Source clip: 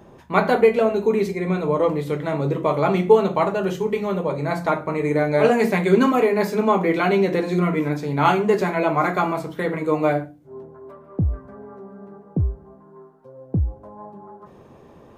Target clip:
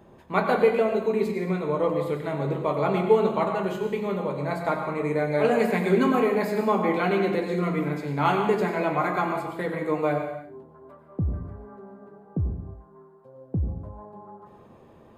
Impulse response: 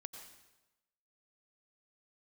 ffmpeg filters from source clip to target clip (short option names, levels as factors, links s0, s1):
-filter_complex "[0:a]equalizer=f=5800:w=6.6:g=-11[s0];[1:a]atrim=start_sample=2205,afade=t=out:st=0.39:d=0.01,atrim=end_sample=17640[s1];[s0][s1]afir=irnorm=-1:irlink=0"